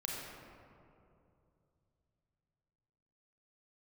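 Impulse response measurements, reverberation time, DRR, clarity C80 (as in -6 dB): 2.7 s, -3.0 dB, 0.0 dB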